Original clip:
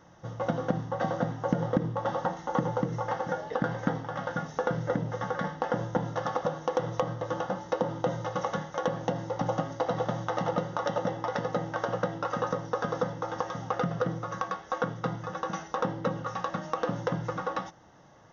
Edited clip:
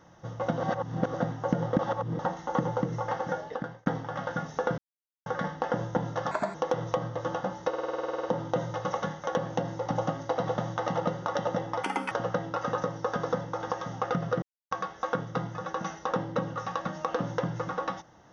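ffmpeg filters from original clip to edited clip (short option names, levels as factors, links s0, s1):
-filter_complex "[0:a]asplit=25[s0][s1][s2][s3][s4][s5][s6][s7][s8][s9][s10][s11][s12][s13][s14][s15][s16][s17][s18][s19][s20][s21][s22][s23][s24];[s0]atrim=end=0.602[s25];[s1]atrim=start=0.598:end=1.142,asetpts=PTS-STARTPTS,areverse[s26];[s2]atrim=start=1.138:end=1.792[s27];[s3]atrim=start=1.788:end=2.192,asetpts=PTS-STARTPTS,areverse[s28];[s4]atrim=start=2.188:end=3.86,asetpts=PTS-STARTPTS,afade=t=out:st=1.172:d=0.5[s29];[s5]atrim=start=3.86:end=4.78,asetpts=PTS-STARTPTS,afade=t=in:d=0.004:c=hsin,afade=t=out:st=0.916:d=0.004:c=hsin[s30];[s6]atrim=start=4.78:end=5.26,asetpts=PTS-STARTPTS,volume=0[s31];[s7]atrim=start=5.26:end=6.314,asetpts=PTS-STARTPTS,afade=t=in:d=0.004:c=hsin[s32];[s8]atrim=start=6.31:end=6.6,asetpts=PTS-STARTPTS,asetrate=54684,aresample=44100[s33];[s9]atrim=start=6.596:end=7.792[s34];[s10]atrim=start=7.738:end=7.792[s35];[s11]atrim=start=7.738:end=7.792[s36];[s12]atrim=start=7.738:end=7.792[s37];[s13]atrim=start=7.738:end=7.792[s38];[s14]atrim=start=7.738:end=7.792[s39];[s15]atrim=start=7.738:end=7.792[s40];[s16]atrim=start=7.738:end=7.792[s41];[s17]atrim=start=7.738:end=7.792[s42];[s18]atrim=start=7.738:end=7.792[s43];[s19]atrim=start=7.738:end=7.792[s44];[s20]atrim=start=7.738:end=11.344[s45];[s21]atrim=start=11.34:end=11.8,asetpts=PTS-STARTPTS,asetrate=72765,aresample=44100[s46];[s22]atrim=start=11.796:end=14.11,asetpts=PTS-STARTPTS,afade=t=out:st=2.31:d=0.004:c=hsin[s47];[s23]atrim=start=14.11:end=14.4,asetpts=PTS-STARTPTS,volume=0[s48];[s24]atrim=start=14.4,asetpts=PTS-STARTPTS,afade=t=in:d=0.004:c=hsin[s49];[s25][s26]acrossfade=d=0.004:c1=hsin:c2=hsin[s50];[s50][s27]acrossfade=d=0.004:c1=hsin:c2=hsin[s51];[s51][s28]acrossfade=d=0.004:c1=hsin:c2=hsin[s52];[s29][s30][s31][s32]concat=n=4:v=0:a=1[s53];[s52][s53]acrossfade=d=0.004:c1=hsin:c2=hsin[s54];[s54][s33]acrossfade=d=0.004:c1=hsin:c2=hsin[s55];[s55][s34]acrossfade=d=0.004:c1=hsin:c2=hsin[s56];[s56][s35]acrossfade=d=0.004:c1=hsin:c2=hsin[s57];[s57][s36]acrossfade=d=0.004:c1=hsin:c2=hsin[s58];[s58][s37]acrossfade=d=0.004:c1=hsin:c2=hsin[s59];[s59][s38]acrossfade=d=0.004:c1=hsin:c2=hsin[s60];[s60][s39]acrossfade=d=0.004:c1=hsin:c2=hsin[s61];[s61][s40]acrossfade=d=0.004:c1=hsin:c2=hsin[s62];[s62][s41]acrossfade=d=0.004:c1=hsin:c2=hsin[s63];[s63][s42]acrossfade=d=0.004:c1=hsin:c2=hsin[s64];[s64][s43]acrossfade=d=0.004:c1=hsin:c2=hsin[s65];[s65][s44]acrossfade=d=0.004:c1=hsin:c2=hsin[s66];[s66][s45]acrossfade=d=0.004:c1=hsin:c2=hsin[s67];[s67][s46]acrossfade=d=0.004:c1=hsin:c2=hsin[s68];[s47][s48][s49]concat=n=3:v=0:a=1[s69];[s68][s69]acrossfade=d=0.004:c1=hsin:c2=hsin"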